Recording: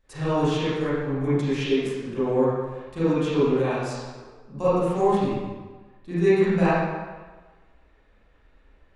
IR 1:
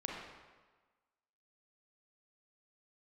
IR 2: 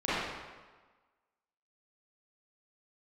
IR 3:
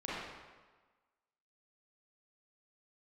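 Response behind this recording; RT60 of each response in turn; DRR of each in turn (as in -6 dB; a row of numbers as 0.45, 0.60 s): 2; 1.4, 1.4, 1.4 s; -2.0, -13.5, -9.0 dB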